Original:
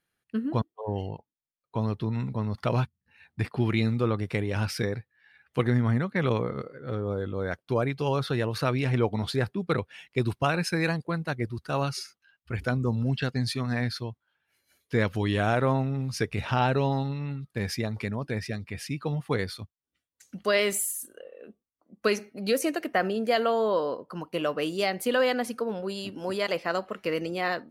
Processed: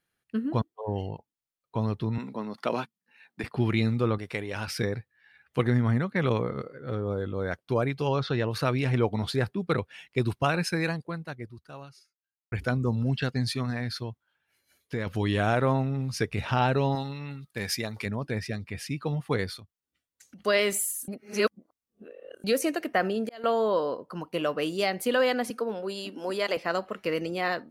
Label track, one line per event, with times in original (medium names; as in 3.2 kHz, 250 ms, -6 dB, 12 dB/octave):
2.180000	3.440000	high-pass 210 Hz 24 dB/octave
4.180000	4.680000	bass shelf 300 Hz -11 dB
8.070000	8.510000	low-pass 6.2 kHz 24 dB/octave
10.660000	12.520000	fade out quadratic
13.700000	15.070000	compression 3:1, threshold -28 dBFS
16.950000	18.060000	tilt EQ +2 dB/octave
19.590000	20.390000	compression 5:1, threshold -46 dBFS
21.080000	22.440000	reverse
22.990000	23.440000	slow attack 644 ms
25.500000	26.570000	high-pass 210 Hz 24 dB/octave